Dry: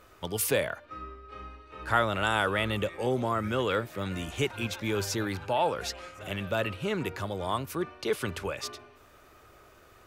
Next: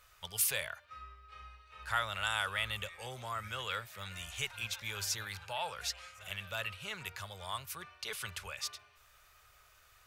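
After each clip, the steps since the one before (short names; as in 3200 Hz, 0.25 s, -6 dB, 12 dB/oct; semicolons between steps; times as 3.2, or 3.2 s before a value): passive tone stack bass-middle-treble 10-0-10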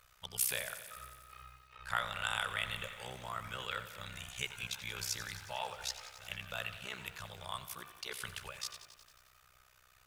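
AM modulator 63 Hz, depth 85%; lo-fi delay 90 ms, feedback 80%, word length 10-bit, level -13 dB; gain +1.5 dB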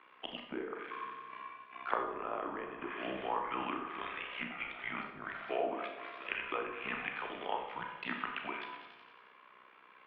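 treble ducked by the level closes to 730 Hz, closed at -35 dBFS; Schroeder reverb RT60 0.64 s, combs from 27 ms, DRR 4 dB; mistuned SSB -190 Hz 340–3100 Hz; gain +7 dB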